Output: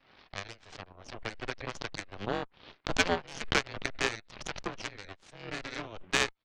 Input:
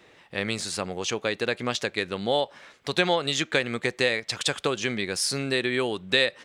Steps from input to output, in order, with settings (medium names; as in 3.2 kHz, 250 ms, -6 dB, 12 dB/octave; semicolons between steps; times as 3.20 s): mistuned SSB -98 Hz 270–2900 Hz; Chebyshev shaper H 3 -9 dB, 5 -38 dB, 6 -30 dB, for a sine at -10 dBFS; swell ahead of each attack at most 88 dB/s; trim +4 dB